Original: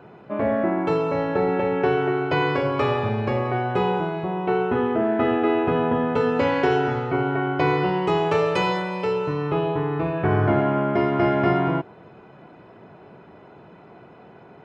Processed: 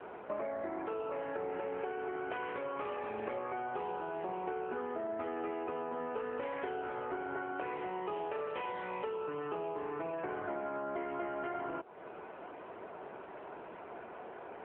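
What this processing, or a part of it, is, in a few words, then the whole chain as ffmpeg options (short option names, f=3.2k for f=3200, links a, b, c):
voicemail: -af "highpass=400,lowpass=2.8k,acompressor=threshold=-38dB:ratio=10,volume=3dB" -ar 8000 -c:a libopencore_amrnb -b:a 7950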